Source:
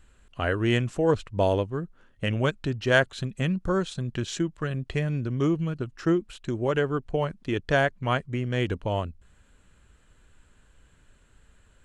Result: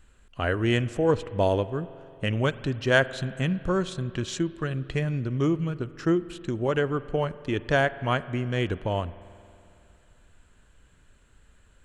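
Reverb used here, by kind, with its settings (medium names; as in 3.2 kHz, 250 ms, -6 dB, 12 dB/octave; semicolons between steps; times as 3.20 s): spring tank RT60 2.7 s, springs 45 ms, chirp 65 ms, DRR 16 dB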